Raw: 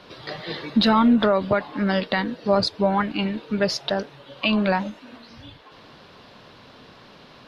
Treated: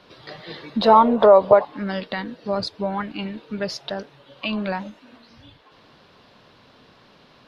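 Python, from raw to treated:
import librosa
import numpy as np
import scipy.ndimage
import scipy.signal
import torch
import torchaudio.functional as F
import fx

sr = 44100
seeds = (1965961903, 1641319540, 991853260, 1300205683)

y = fx.band_shelf(x, sr, hz=680.0, db=14.5, octaves=1.7, at=(0.82, 1.65))
y = y * librosa.db_to_amplitude(-5.0)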